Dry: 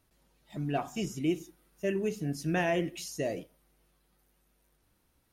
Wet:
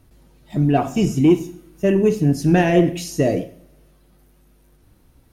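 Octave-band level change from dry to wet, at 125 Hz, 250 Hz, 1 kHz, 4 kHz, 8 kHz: +17.0, +16.0, +12.0, +9.0, +9.0 decibels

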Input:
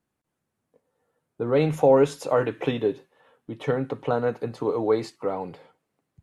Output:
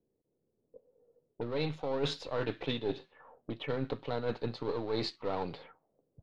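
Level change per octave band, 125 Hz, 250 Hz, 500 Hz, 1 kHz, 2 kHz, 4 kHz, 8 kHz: −9.0 dB, −10.0 dB, −13.0 dB, −11.5 dB, −7.5 dB, +2.0 dB, can't be measured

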